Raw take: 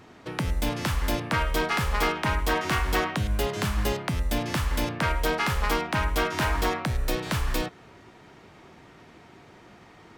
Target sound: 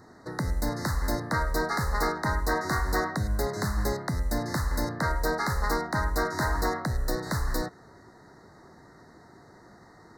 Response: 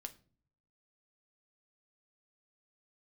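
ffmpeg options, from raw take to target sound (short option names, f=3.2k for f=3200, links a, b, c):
-af "asuperstop=centerf=2800:order=20:qfactor=1.6,volume=-1.5dB"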